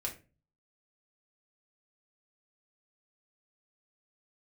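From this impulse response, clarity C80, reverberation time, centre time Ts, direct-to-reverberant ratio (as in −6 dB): 17.5 dB, 0.30 s, 14 ms, −2.0 dB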